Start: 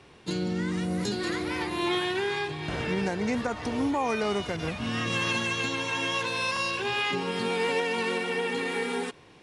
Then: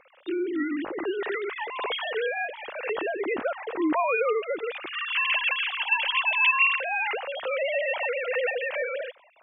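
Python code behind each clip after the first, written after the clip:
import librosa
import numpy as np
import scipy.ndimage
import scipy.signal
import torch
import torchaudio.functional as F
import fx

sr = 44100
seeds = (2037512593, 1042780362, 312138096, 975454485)

y = fx.sine_speech(x, sr)
y = y * librosa.db_to_amplitude(1.5)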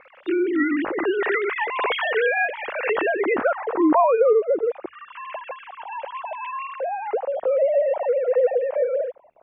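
y = fx.dmg_crackle(x, sr, seeds[0], per_s=170.0, level_db=-55.0)
y = fx.hum_notches(y, sr, base_hz=50, count=2)
y = fx.filter_sweep_lowpass(y, sr, from_hz=2100.0, to_hz=600.0, start_s=3.09, end_s=4.42, q=1.3)
y = y * librosa.db_to_amplitude(6.5)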